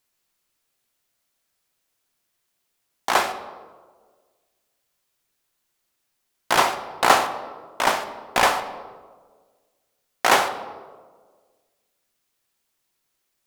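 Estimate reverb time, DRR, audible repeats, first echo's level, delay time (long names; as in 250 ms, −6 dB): 1.6 s, 8.5 dB, no echo audible, no echo audible, no echo audible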